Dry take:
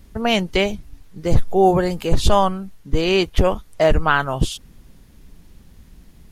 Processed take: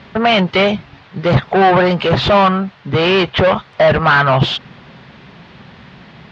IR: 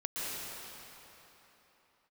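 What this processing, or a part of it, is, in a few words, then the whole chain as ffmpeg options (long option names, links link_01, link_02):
overdrive pedal into a guitar cabinet: -filter_complex "[0:a]asplit=2[link_01][link_02];[link_02]highpass=frequency=720:poles=1,volume=30dB,asoftclip=type=tanh:threshold=-2dB[link_03];[link_01][link_03]amix=inputs=2:normalize=0,lowpass=frequency=2100:poles=1,volume=-6dB,highpass=90,equalizer=frequency=130:width_type=q:width=4:gain=7,equalizer=frequency=300:width_type=q:width=4:gain=-9,equalizer=frequency=460:width_type=q:width=4:gain=-4,lowpass=frequency=4100:width=0.5412,lowpass=frequency=4100:width=1.3066"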